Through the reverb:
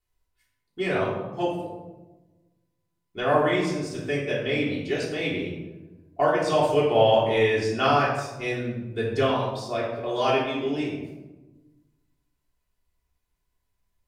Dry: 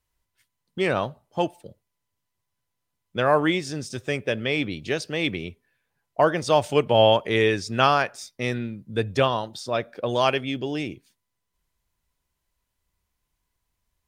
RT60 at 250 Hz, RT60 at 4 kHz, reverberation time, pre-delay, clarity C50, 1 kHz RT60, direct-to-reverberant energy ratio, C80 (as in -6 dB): 1.6 s, 0.60 s, 1.2 s, 3 ms, 2.0 dB, 1.0 s, -7.0 dB, 5.0 dB